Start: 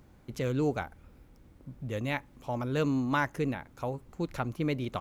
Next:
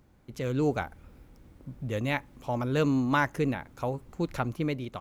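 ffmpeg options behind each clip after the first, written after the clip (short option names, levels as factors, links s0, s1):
-af "dynaudnorm=f=140:g=7:m=2.24,volume=0.631"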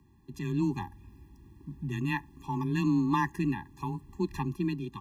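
-af "afreqshift=18,afftfilt=real='re*eq(mod(floor(b*sr/1024/400),2),0)':imag='im*eq(mod(floor(b*sr/1024/400),2),0)':win_size=1024:overlap=0.75"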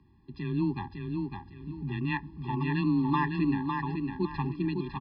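-af "aresample=11025,aresample=44100,aecho=1:1:555|1110|1665|2220:0.596|0.185|0.0572|0.0177"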